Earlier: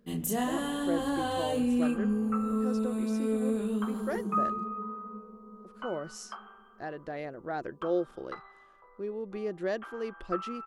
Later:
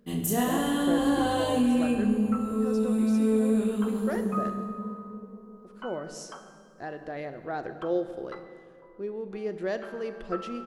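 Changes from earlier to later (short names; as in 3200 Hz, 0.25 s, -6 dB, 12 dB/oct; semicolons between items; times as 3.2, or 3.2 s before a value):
second sound: add notch 1200 Hz, Q 10; reverb: on, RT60 2.3 s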